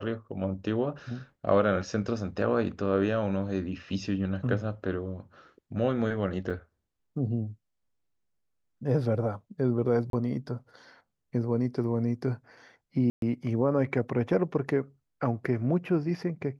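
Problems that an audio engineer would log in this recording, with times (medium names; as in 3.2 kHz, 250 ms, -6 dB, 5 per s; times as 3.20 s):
6.50 s: dropout 4.7 ms
10.10–10.13 s: dropout 32 ms
13.10–13.22 s: dropout 122 ms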